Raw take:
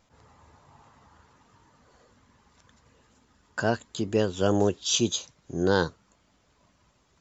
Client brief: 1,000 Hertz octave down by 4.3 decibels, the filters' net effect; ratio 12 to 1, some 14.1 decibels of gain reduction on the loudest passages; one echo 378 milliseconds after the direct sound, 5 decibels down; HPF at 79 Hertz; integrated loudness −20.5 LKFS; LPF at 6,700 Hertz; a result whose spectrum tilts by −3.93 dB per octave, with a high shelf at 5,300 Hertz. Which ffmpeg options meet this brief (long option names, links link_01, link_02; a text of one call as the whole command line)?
ffmpeg -i in.wav -af "highpass=79,lowpass=6700,equalizer=frequency=1000:width_type=o:gain=-6,highshelf=frequency=5300:gain=-4,acompressor=threshold=-33dB:ratio=12,aecho=1:1:378:0.562,volume=18dB" out.wav